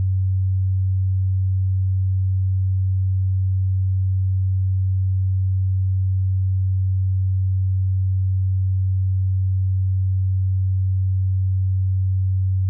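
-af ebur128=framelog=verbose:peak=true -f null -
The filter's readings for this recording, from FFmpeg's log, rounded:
Integrated loudness:
  I:         -21.2 LUFS
  Threshold: -31.2 LUFS
Loudness range:
  LRA:         0.0 LU
  Threshold: -41.2 LUFS
  LRA low:   -21.2 LUFS
  LRA high:  -21.2 LUFS
True peak:
  Peak:      -15.5 dBFS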